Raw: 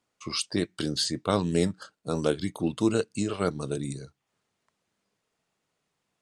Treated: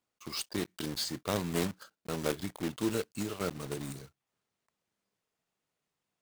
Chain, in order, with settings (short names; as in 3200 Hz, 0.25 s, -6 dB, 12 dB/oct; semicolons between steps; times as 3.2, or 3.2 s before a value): block floating point 3-bit; gain -7.5 dB